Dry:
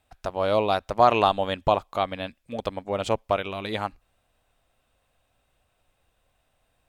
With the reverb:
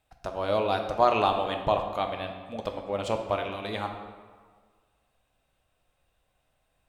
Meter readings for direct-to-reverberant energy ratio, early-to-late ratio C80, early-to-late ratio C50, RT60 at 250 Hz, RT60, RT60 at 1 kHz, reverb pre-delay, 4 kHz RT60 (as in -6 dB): 4.0 dB, 8.5 dB, 6.5 dB, 1.6 s, 1.6 s, 1.6 s, 4 ms, 1.0 s